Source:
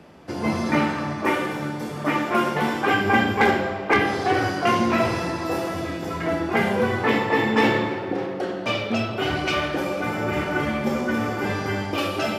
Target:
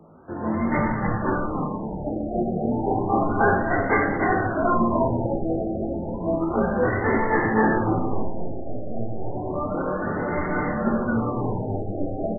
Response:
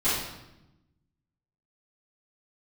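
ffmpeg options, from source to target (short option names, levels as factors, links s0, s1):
-filter_complex "[0:a]flanger=delay=18:depth=6.1:speed=1.1,asettb=1/sr,asplit=3[s0][s1][s2];[s0]atrim=end=7.994[s3];[s1]atrim=start=7.99:end=9.35,asetpts=PTS-STARTPTS,afade=t=in:d=0.004:c=qsin,afade=t=out:st=1.356:d=0.004:c=qsin,aeval=exprs='max(val(0),0)':c=same[s4];[s2]atrim=start=9.346[s5];[s3][s4]acrossfade=d=0.004:c1=hsin:c2=qsin[s6];[s6][s5]acrossfade=d=0.004:c1=qsin:c2=hsin,asplit=5[s7][s8][s9][s10][s11];[s8]adelay=301,afreqshift=-110,volume=0.631[s12];[s9]adelay=602,afreqshift=-220,volume=0.202[s13];[s10]adelay=903,afreqshift=-330,volume=0.0646[s14];[s11]adelay=1204,afreqshift=-440,volume=0.0207[s15];[s7][s12][s13][s14][s15]amix=inputs=5:normalize=0,asplit=2[s16][s17];[1:a]atrim=start_sample=2205[s18];[s17][s18]afir=irnorm=-1:irlink=0,volume=0.0891[s19];[s16][s19]amix=inputs=2:normalize=0,afftfilt=real='re*lt(b*sr/1024,790*pow(2200/790,0.5+0.5*sin(2*PI*0.31*pts/sr)))':imag='im*lt(b*sr/1024,790*pow(2200/790,0.5+0.5*sin(2*PI*0.31*pts/sr)))':win_size=1024:overlap=0.75"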